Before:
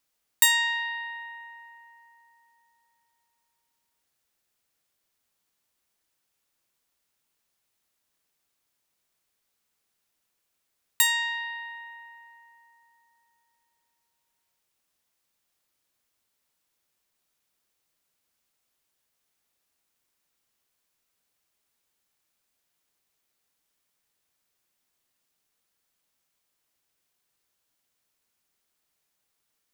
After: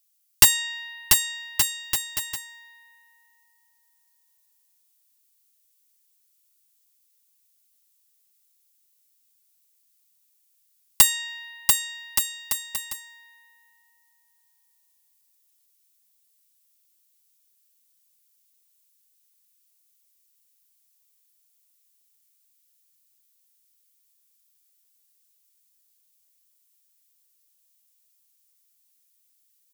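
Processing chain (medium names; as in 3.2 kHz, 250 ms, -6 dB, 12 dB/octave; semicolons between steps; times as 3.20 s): high-pass 1.4 kHz 6 dB/octave; differentiator; integer overflow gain 8.5 dB; bouncing-ball echo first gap 690 ms, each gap 0.7×, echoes 5; trim +6 dB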